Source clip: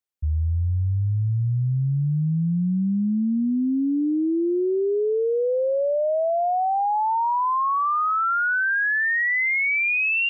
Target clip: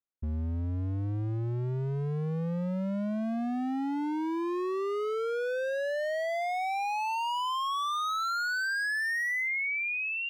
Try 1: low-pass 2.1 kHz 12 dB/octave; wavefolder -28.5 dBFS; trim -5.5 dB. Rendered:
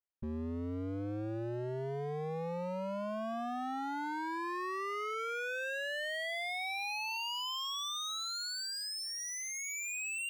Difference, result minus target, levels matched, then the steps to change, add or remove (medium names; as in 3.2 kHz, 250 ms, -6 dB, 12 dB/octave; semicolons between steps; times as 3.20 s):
wavefolder: distortion +15 dB
change: wavefolder -22 dBFS